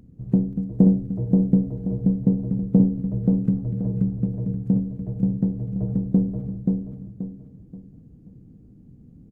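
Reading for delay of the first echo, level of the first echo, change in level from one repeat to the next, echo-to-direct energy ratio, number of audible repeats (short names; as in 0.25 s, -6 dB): 0.53 s, -3.0 dB, -9.5 dB, -2.5 dB, 4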